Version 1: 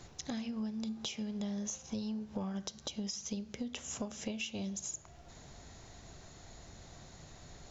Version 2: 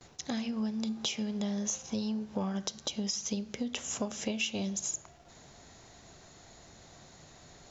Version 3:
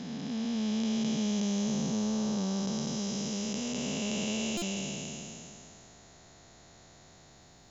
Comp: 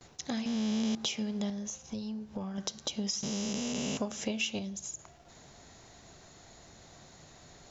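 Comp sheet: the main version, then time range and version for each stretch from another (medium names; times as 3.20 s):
2
0.46–0.95 s: from 3
1.50–2.58 s: from 1
3.23–3.97 s: from 3
4.59–4.99 s: from 1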